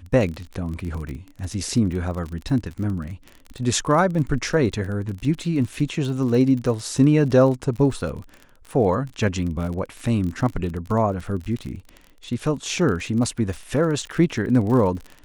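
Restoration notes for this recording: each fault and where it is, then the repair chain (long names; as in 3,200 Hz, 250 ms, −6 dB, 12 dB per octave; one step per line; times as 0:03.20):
surface crackle 32 per second −29 dBFS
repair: click removal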